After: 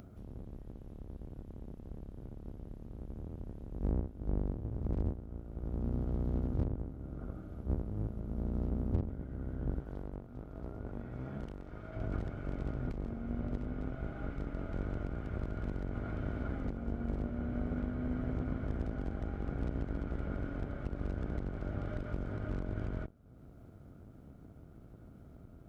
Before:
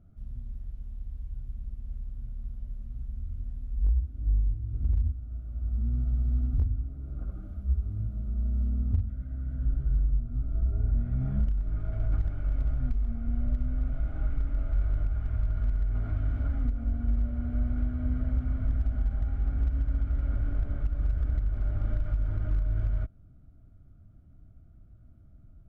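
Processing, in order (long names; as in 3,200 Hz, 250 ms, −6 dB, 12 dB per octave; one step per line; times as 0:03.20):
sub-octave generator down 1 octave, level −1 dB
high-pass filter 240 Hz 6 dB per octave, from 0:09.80 800 Hz, from 0:11.96 310 Hz
upward compression, threshold −45 dBFS
level +2 dB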